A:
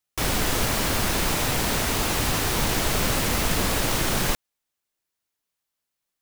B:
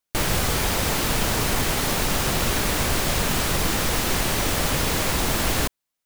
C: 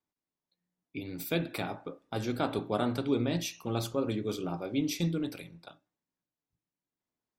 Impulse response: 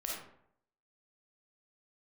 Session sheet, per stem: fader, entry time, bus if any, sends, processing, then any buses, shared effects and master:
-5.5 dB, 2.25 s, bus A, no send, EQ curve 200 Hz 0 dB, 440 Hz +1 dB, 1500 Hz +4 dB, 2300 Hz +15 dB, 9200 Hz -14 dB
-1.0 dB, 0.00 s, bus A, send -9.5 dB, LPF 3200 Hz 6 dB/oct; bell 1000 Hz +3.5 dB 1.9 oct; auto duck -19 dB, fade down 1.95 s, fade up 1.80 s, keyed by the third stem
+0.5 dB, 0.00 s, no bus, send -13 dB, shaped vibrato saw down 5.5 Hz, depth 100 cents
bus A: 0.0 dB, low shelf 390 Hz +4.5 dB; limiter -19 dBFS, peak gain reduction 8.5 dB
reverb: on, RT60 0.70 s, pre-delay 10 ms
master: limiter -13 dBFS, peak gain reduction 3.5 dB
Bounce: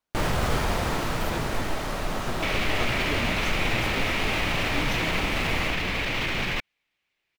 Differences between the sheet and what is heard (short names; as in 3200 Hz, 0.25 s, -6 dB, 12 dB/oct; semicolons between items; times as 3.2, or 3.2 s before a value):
stem A -5.5 dB -> +2.0 dB; stem C +0.5 dB -> -7.0 dB